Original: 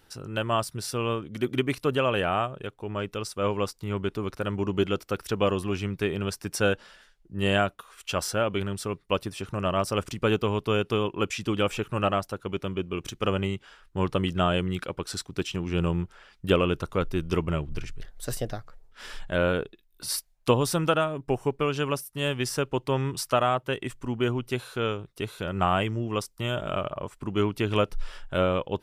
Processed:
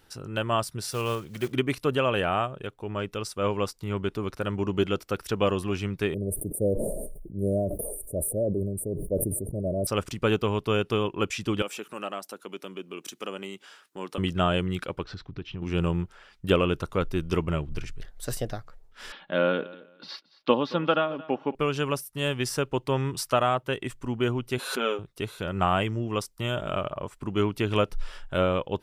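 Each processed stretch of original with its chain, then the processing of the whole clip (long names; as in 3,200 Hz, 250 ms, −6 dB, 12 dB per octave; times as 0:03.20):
0:00.92–0:01.53: one scale factor per block 5 bits + parametric band 270 Hz −9 dB 0.42 octaves
0:06.14–0:09.87: Chebyshev band-stop filter 630–9,100 Hz, order 5 + level that may fall only so fast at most 32 dB per second
0:11.62–0:14.18: high-pass filter 210 Hz 24 dB per octave + high-shelf EQ 4,800 Hz +10 dB + downward compressor 1.5 to 1, threshold −45 dBFS
0:15.03–0:15.62: Bessel low-pass filter 2,900 Hz, order 6 + low-shelf EQ 140 Hz +11 dB + downward compressor 2.5 to 1, threshold −36 dBFS
0:19.12–0:21.55: elliptic band-pass filter 170–3,800 Hz + comb filter 3.6 ms, depth 35% + repeating echo 223 ms, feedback 21%, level −20 dB
0:24.58–0:24.99: linear-phase brick-wall high-pass 170 Hz + comb filter 7.4 ms + background raised ahead of every attack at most 63 dB per second
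whole clip: no processing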